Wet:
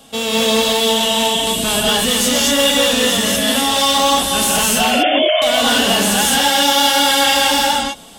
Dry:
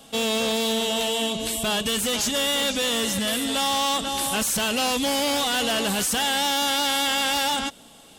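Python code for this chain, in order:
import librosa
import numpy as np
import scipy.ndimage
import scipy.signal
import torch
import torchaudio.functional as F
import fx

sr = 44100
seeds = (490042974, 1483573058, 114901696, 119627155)

y = fx.sine_speech(x, sr, at=(4.78, 5.42))
y = fx.rev_gated(y, sr, seeds[0], gate_ms=260, shape='rising', drr_db=-4.5)
y = y * 10.0 ** (3.5 / 20.0)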